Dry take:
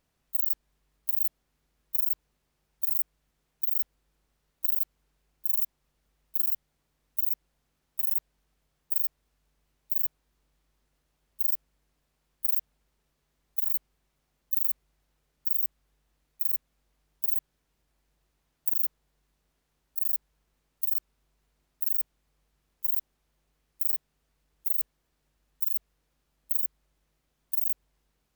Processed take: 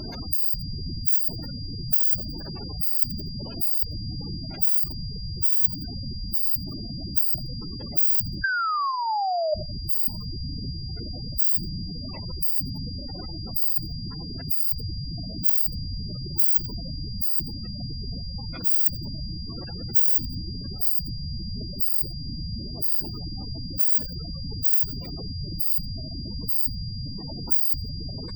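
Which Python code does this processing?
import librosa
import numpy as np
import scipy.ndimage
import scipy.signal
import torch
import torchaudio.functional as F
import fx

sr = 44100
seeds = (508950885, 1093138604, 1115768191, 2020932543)

y = fx.pitch_trill(x, sr, semitones=5.5, every_ms=600)
y = fx.peak_eq(y, sr, hz=230.0, db=5.0, octaves=0.33)
y = fx.whisperise(y, sr, seeds[0])
y = fx.spec_paint(y, sr, seeds[1], shape='fall', start_s=8.44, length_s=1.1, low_hz=600.0, high_hz=1600.0, level_db=-25.0)
y = fx.power_curve(y, sr, exponent=0.5)
y = fx.over_compress(y, sr, threshold_db=-24.0, ratio=-0.5)
y = fx.echo_thinned(y, sr, ms=86, feedback_pct=64, hz=580.0, wet_db=-14)
y = fx.spec_gate(y, sr, threshold_db=-10, keep='strong')
y = y + 10.0 ** (-42.0 / 20.0) * np.sin(2.0 * np.pi * 4800.0 * np.arange(len(y)) / sr)
y = fx.notch(y, sr, hz=5000.0, q=12.0)
y = F.gain(torch.from_numpy(y), 6.5).numpy()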